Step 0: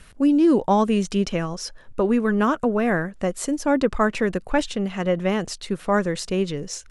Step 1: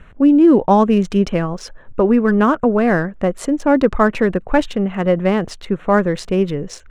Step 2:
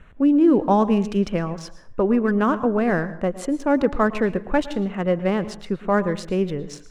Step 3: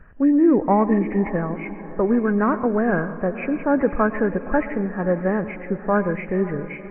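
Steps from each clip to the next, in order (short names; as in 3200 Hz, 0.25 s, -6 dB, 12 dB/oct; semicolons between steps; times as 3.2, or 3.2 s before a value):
Wiener smoothing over 9 samples; high shelf 4300 Hz -8.5 dB; gain +6.5 dB
plate-style reverb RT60 0.51 s, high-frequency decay 0.65×, pre-delay 0.1 s, DRR 14.5 dB; gain -5.5 dB
nonlinear frequency compression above 1600 Hz 4:1; diffused feedback echo 0.55 s, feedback 49%, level -15 dB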